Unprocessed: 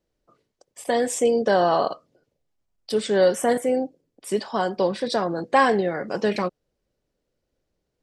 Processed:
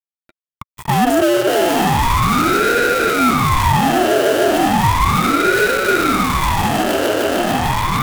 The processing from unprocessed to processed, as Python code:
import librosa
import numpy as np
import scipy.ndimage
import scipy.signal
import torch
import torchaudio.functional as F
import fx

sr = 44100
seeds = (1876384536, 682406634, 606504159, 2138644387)

y = scipy.ndimage.median_filter(x, 41, mode='constant')
y = fx.notch(y, sr, hz=1600.0, q=5.5)
y = fx.echo_swell(y, sr, ms=150, loudest=5, wet_db=-8.5)
y = fx.fuzz(y, sr, gain_db=50.0, gate_db=-54.0)
y = scipy.signal.sosfilt(scipy.signal.butter(2, 290.0, 'highpass', fs=sr, output='sos'), y)
y = fx.high_shelf(y, sr, hz=6500.0, db=12.0)
y = fx.small_body(y, sr, hz=(510.0, 1500.0, 2900.0), ring_ms=20, db=14)
y = fx.ring_lfo(y, sr, carrier_hz=530.0, swing_pct=80, hz=0.35)
y = y * librosa.db_to_amplitude(-7.0)